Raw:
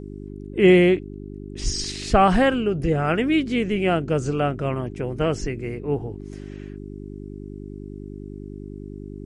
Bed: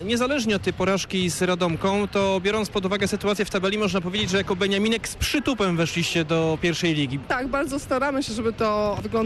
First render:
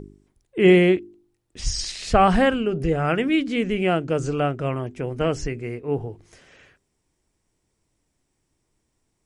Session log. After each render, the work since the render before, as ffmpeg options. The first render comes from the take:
-af "bandreject=f=50:t=h:w=4,bandreject=f=100:t=h:w=4,bandreject=f=150:t=h:w=4,bandreject=f=200:t=h:w=4,bandreject=f=250:t=h:w=4,bandreject=f=300:t=h:w=4,bandreject=f=350:t=h:w=4,bandreject=f=400:t=h:w=4"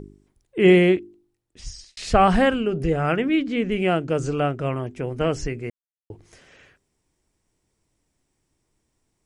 -filter_complex "[0:a]asettb=1/sr,asplit=3[s0][s1][s2];[s0]atrim=end=3.164[s3];[s1]atrim=start=3.16:end=3.72,asetpts=PTS-STARTPTS,afade=t=in:d=0.004:c=qsin,afade=t=out:st=0.556:d=0.004:c=qsin,aemphasis=mode=reproduction:type=50kf[s4];[s2]atrim=start=3.716[s5];[s3][s4]acrossfade=d=0.004:c1=hsin:c2=qsin[s6];[s6][s5]acrossfade=d=0.004:c1=qsin:c2=hsin,asplit=4[s7][s8][s9][s10];[s7]atrim=end=1.97,asetpts=PTS-STARTPTS,afade=t=out:st=0.99:d=0.98[s11];[s8]atrim=start=1.97:end=5.7,asetpts=PTS-STARTPTS,afade=t=in:d=0.004:c=hsin,afade=t=out:st=3.726:d=0.004:c=hsin[s12];[s9]atrim=start=5.7:end=6.1,asetpts=PTS-STARTPTS,volume=0[s13];[s10]atrim=start=6.1,asetpts=PTS-STARTPTS,afade=t=in:d=0.004:c=hsin[s14];[s11][s12][s13][s14]concat=n=4:v=0:a=1"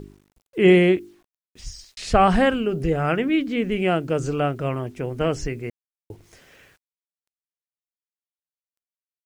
-af "acrusher=bits=9:mix=0:aa=0.000001"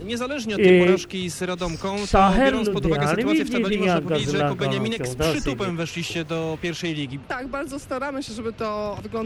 -filter_complex "[1:a]volume=0.596[s0];[0:a][s0]amix=inputs=2:normalize=0"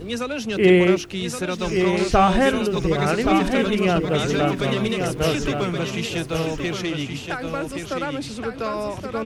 -af "aecho=1:1:1123|2246|3369:0.501|0.11|0.0243"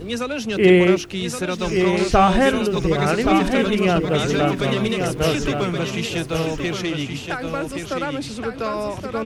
-af "volume=1.19"

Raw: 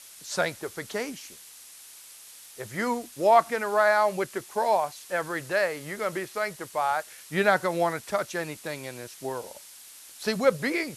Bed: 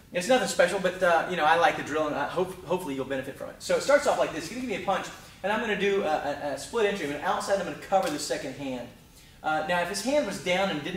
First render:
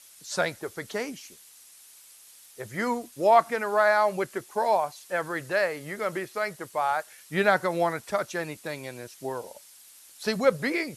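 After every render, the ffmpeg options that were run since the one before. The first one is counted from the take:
-af "afftdn=nr=6:nf=-48"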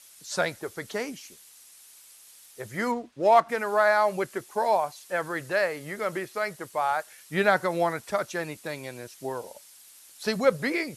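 -filter_complex "[0:a]asplit=3[s0][s1][s2];[s0]afade=t=out:st=2.91:d=0.02[s3];[s1]adynamicsmooth=sensitivity=7:basefreq=2700,afade=t=in:st=2.91:d=0.02,afade=t=out:st=3.48:d=0.02[s4];[s2]afade=t=in:st=3.48:d=0.02[s5];[s3][s4][s5]amix=inputs=3:normalize=0"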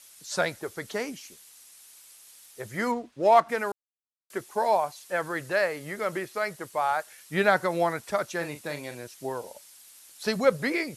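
-filter_complex "[0:a]asettb=1/sr,asplit=3[s0][s1][s2];[s0]atrim=end=8.374[s3];[s1]atrim=start=8.37:end=8.95,asetpts=PTS-STARTPTS,afade=t=in:d=0.004:c=qsin,afade=t=out:st=0.576:d=0.004:c=qsin,asplit=2[s4][s5];[s5]adelay=41,volume=0.355[s6];[s4][s6]amix=inputs=2:normalize=0,atrim=end_sample=25578[s7];[s2]atrim=start=8.946[s8];[s3][s7]acrossfade=d=0.004:c1=hsin:c2=qsin[s9];[s9][s8]acrossfade=d=0.004:c1=qsin:c2=hsin,asplit=3[s10][s11][s12];[s10]atrim=end=3.72,asetpts=PTS-STARTPTS,afade=t=out:st=3.716:d=0.004:c=hsin[s13];[s11]atrim=start=3.72:end=4.3,asetpts=PTS-STARTPTS,volume=0[s14];[s12]atrim=start=4.3,asetpts=PTS-STARTPTS,afade=t=in:d=0.004:c=hsin[s15];[s13][s14][s15]concat=n=3:v=0:a=1"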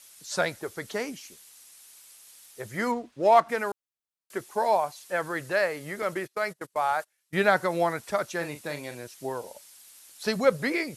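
-filter_complex "[0:a]asettb=1/sr,asplit=3[s0][s1][s2];[s0]atrim=end=6.024[s3];[s1]atrim=start=6.02:end=7.49,asetpts=PTS-STARTPTS,afade=t=in:d=0.004:c=qsin,afade=t=out:st=1.466:d=0.004:c=qsin,agate=range=0.0562:threshold=0.0112:ratio=16:release=100:detection=peak[s4];[s2]atrim=start=7.486[s5];[s3][s4]acrossfade=d=0.004:c1=hsin:c2=qsin[s6];[s6][s5]acrossfade=d=0.004:c1=qsin:c2=hsin"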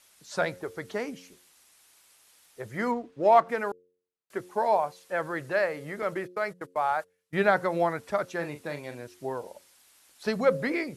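-af "highshelf=f=3400:g=-10.5,bandreject=f=89.92:t=h:w=4,bandreject=f=179.84:t=h:w=4,bandreject=f=269.76:t=h:w=4,bandreject=f=359.68:t=h:w=4,bandreject=f=449.6:t=h:w=4,bandreject=f=539.52:t=h:w=4"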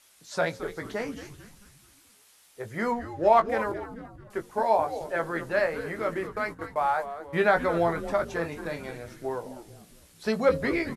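-filter_complex "[0:a]asplit=2[s0][s1];[s1]adelay=18,volume=0.473[s2];[s0][s2]amix=inputs=2:normalize=0,asplit=6[s3][s4][s5][s6][s7][s8];[s4]adelay=220,afreqshift=-140,volume=0.251[s9];[s5]adelay=440,afreqshift=-280,volume=0.12[s10];[s6]adelay=660,afreqshift=-420,volume=0.0575[s11];[s7]adelay=880,afreqshift=-560,volume=0.0279[s12];[s8]adelay=1100,afreqshift=-700,volume=0.0133[s13];[s3][s9][s10][s11][s12][s13]amix=inputs=6:normalize=0"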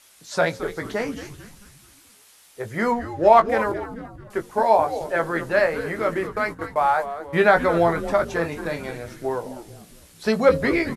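-af "volume=2"

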